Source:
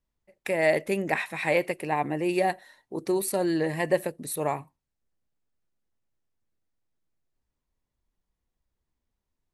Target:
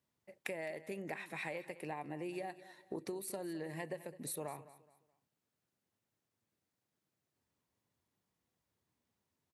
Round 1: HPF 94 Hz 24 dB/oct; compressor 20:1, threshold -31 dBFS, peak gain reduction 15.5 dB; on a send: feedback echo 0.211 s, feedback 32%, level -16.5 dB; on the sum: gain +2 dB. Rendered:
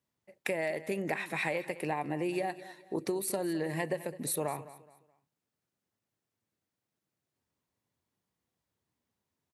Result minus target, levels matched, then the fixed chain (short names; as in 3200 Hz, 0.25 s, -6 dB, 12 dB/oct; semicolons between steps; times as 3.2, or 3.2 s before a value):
compressor: peak gain reduction -9.5 dB
HPF 94 Hz 24 dB/oct; compressor 20:1, threshold -41 dBFS, peak gain reduction 25 dB; on a send: feedback echo 0.211 s, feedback 32%, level -16.5 dB; on the sum: gain +2 dB